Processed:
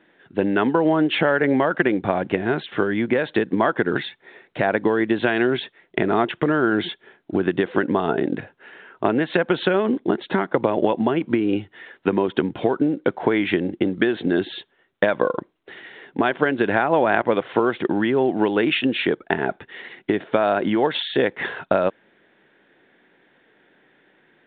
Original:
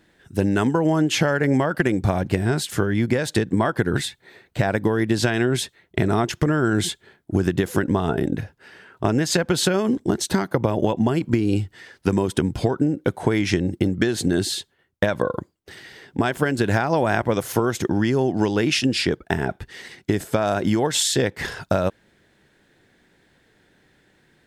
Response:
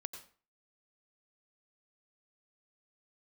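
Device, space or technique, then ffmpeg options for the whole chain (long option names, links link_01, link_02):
telephone: -af "highpass=260,lowpass=3400,volume=3dB" -ar 8000 -c:a pcm_mulaw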